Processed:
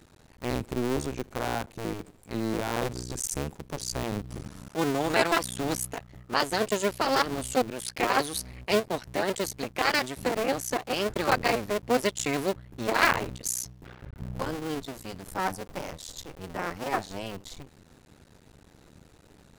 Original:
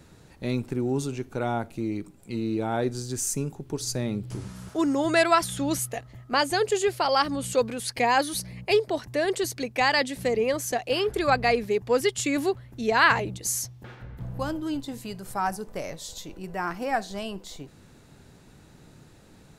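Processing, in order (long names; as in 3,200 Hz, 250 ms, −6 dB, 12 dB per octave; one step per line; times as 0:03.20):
sub-harmonics by changed cycles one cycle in 2, muted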